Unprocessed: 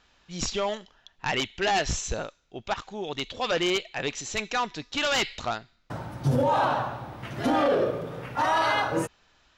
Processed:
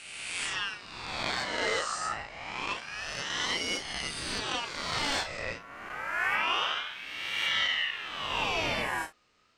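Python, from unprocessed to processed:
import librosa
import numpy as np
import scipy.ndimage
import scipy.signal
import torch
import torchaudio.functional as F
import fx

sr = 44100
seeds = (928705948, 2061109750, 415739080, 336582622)

y = fx.spec_swells(x, sr, rise_s=1.63)
y = fx.room_early_taps(y, sr, ms=(33, 55), db=(-8.0, -15.0))
y = fx.ring_lfo(y, sr, carrier_hz=1900.0, swing_pct=35, hz=0.27)
y = F.gain(torch.from_numpy(y), -7.0).numpy()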